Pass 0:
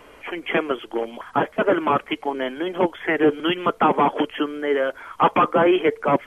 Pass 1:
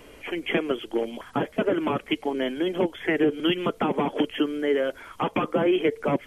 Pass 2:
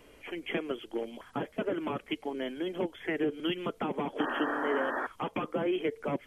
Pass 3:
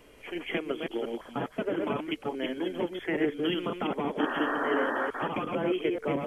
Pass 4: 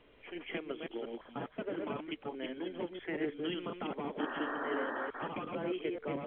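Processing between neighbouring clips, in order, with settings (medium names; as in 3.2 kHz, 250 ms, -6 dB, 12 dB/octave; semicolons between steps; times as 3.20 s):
compression, threshold -18 dBFS, peak gain reduction 7.5 dB; peaking EQ 1.1 kHz -11 dB 1.9 oct; trim +3.5 dB
painted sound noise, 4.19–5.07 s, 230–1900 Hz -25 dBFS; trim -8.5 dB
chunks repeated in reverse 176 ms, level -3 dB; trim +1 dB
trim -8 dB; A-law 64 kbps 8 kHz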